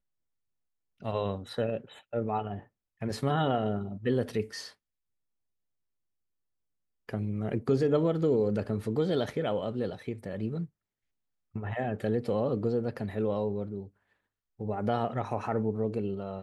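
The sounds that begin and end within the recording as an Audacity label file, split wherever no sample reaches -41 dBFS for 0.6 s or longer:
1.020000	4.690000	sound
7.090000	10.660000	sound
11.560000	13.850000	sound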